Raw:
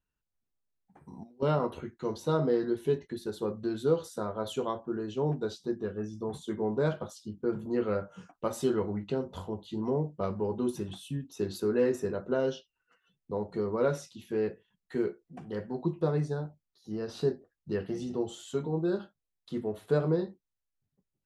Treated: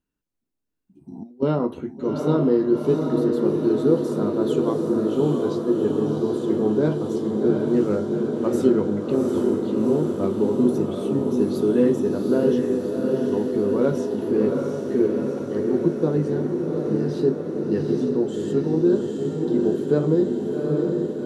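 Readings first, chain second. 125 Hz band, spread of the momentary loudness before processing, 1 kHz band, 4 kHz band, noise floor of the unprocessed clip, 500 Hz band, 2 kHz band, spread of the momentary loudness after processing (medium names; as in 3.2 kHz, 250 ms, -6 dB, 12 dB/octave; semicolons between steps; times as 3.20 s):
+8.0 dB, 10 LU, +4.5 dB, no reading, under -85 dBFS, +10.0 dB, +3.5 dB, 5 LU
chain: spectral replace 0.86–1.15 s, 400–2400 Hz both; peaking EQ 280 Hz +13 dB 1.3 oct; on a send: echo that smears into a reverb 763 ms, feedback 71%, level -3 dB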